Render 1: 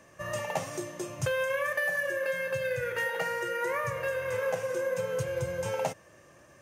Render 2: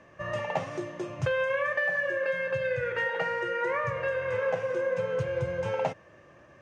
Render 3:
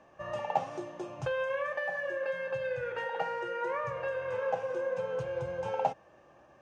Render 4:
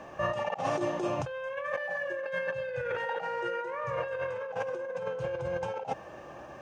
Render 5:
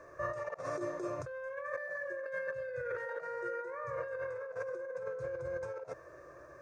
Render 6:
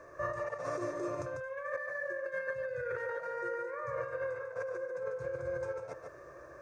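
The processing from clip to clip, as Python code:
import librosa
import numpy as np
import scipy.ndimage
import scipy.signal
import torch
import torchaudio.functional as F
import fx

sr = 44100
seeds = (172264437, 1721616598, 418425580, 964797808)

y1 = scipy.signal.sosfilt(scipy.signal.butter(2, 3100.0, 'lowpass', fs=sr, output='sos'), x)
y1 = y1 * 10.0 ** (2.0 / 20.0)
y2 = fx.graphic_eq_31(y1, sr, hz=(100, 160, 800, 2000), db=(-10, -4, 11, -8))
y2 = y2 * 10.0 ** (-5.0 / 20.0)
y3 = fx.over_compress(y2, sr, threshold_db=-41.0, ratio=-1.0)
y3 = y3 * 10.0 ** (7.0 / 20.0)
y4 = fx.fixed_phaser(y3, sr, hz=810.0, stages=6)
y4 = y4 * 10.0 ** (-4.5 / 20.0)
y5 = y4 + 10.0 ** (-6.0 / 20.0) * np.pad(y4, (int(146 * sr / 1000.0), 0))[:len(y4)]
y5 = y5 * 10.0 ** (1.0 / 20.0)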